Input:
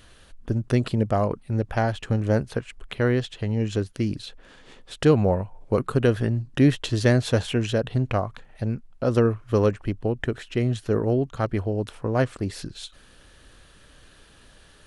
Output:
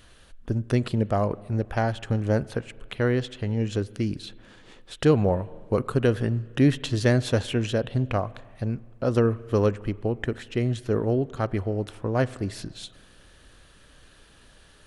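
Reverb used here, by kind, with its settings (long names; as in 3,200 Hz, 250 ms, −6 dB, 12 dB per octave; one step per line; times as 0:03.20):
spring reverb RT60 1.9 s, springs 35/39 ms, chirp 60 ms, DRR 19.5 dB
level −1.5 dB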